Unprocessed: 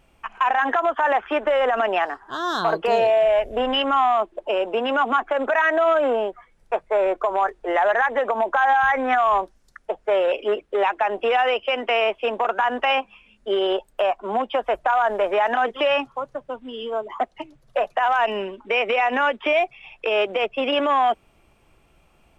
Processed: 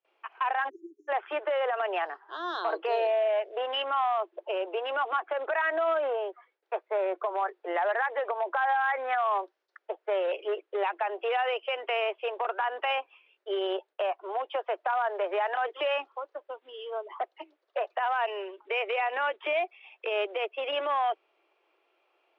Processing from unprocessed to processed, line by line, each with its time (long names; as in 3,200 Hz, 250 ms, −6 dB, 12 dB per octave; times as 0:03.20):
0:00.69–0:01.09: time-frequency box erased 410–5,400 Hz
whole clip: low-pass filter 4,300 Hz 24 dB per octave; noise gate with hold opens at −50 dBFS; Butterworth high-pass 330 Hz 72 dB per octave; level −8.5 dB